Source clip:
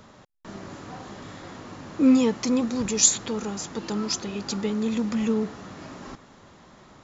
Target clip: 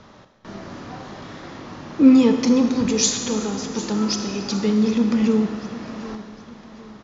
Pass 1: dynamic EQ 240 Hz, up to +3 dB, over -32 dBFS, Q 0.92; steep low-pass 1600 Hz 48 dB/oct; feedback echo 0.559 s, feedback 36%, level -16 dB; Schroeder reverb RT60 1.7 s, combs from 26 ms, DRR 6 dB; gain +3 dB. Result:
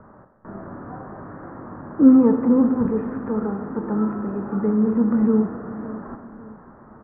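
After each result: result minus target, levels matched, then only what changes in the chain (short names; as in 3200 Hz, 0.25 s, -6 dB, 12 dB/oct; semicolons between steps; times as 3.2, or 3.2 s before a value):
2000 Hz band -7.5 dB; echo 0.197 s early
change: steep low-pass 6300 Hz 48 dB/oct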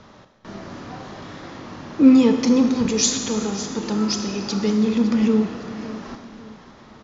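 echo 0.197 s early
change: feedback echo 0.756 s, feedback 36%, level -16 dB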